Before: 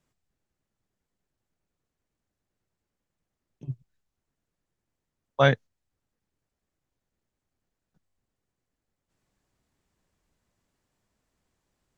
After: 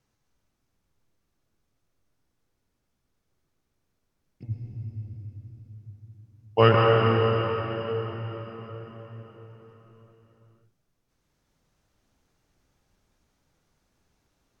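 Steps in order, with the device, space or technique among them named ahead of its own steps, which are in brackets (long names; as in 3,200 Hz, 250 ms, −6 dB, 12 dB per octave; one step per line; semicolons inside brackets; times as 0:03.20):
slowed and reverbed (speed change −18%; convolution reverb RT60 4.8 s, pre-delay 98 ms, DRR −2.5 dB)
level +1.5 dB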